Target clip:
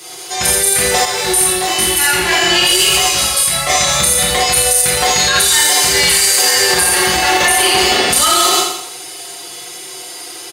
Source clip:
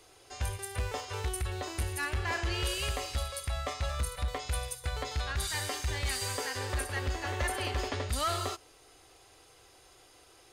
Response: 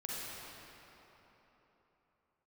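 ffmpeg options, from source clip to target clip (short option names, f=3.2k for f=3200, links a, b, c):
-filter_complex "[0:a]bandreject=f=540:w=12,aecho=1:1:5.6:0.96,aecho=1:1:85|170|255|340|425|510:0.562|0.264|0.124|0.0584|0.0274|0.0129[a];[1:a]atrim=start_sample=2205,atrim=end_sample=6174,asetrate=74970,aresample=44100[b];[a][b]afir=irnorm=-1:irlink=0,asettb=1/sr,asplit=3[c][d][e];[c]atrim=end=1.054[f];[d]atrim=start=1.05:end=3.7,asetpts=PTS-STARTPTS,afade=t=in:d=0.004:c=qsin,afade=t=out:st=2.646:d=0.004:c=qsin,flanger=delay=15:depth=7.1:speed=1[g];[e]atrim=start=3.696[h];[f][g]acrossfade=d=0.004:c1=hsin:c2=qsin[i];[i][h]acrossfade=d=0.004:c1=qsin:c2=hsin,highpass=f=93:w=0.5412,highpass=f=93:w=1.3066,highshelf=f=3.3k:g=11.5,alimiter=level_in=25.5dB:limit=-1dB:release=50:level=0:latency=1,volume=-1dB"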